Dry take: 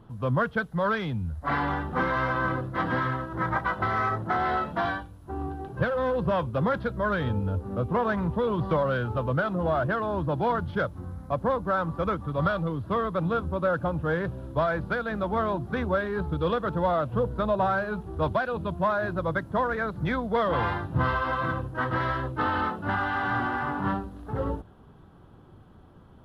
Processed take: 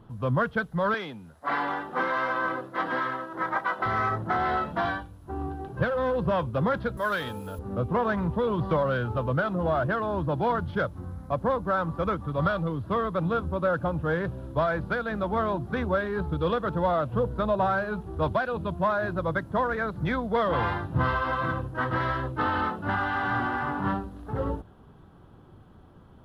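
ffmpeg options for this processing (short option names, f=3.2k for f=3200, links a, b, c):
-filter_complex "[0:a]asettb=1/sr,asplit=3[a][b][c];[a]atrim=end=0.944[d];[b]atrim=start=0.94:end=3.86,asetpts=PTS-STARTPTS,afade=t=in:d=0.004:c=qsin,afade=t=out:st=2.916:d=0.004:c=qsin,highpass=330[e];[c]atrim=start=3.856[f];[d][e]acrossfade=d=0.004:c1=hsin:c2=qsin[g];[g][f]acrossfade=d=0.004:c1=qsin:c2=hsin,asettb=1/sr,asplit=3[h][i][j];[h]atrim=end=6.974[k];[i]atrim=start=6.97:end=7.59,asetpts=PTS-STARTPTS,afade=t=in:d=0.004:c=qsin,afade=t=out:st=0.616:d=0.004:c=qsin,aemphasis=mode=production:type=riaa[l];[j]atrim=start=7.586[m];[k][l]acrossfade=d=0.004:c1=hsin:c2=qsin[n];[n][m]acrossfade=d=0.004:c1=qsin:c2=hsin"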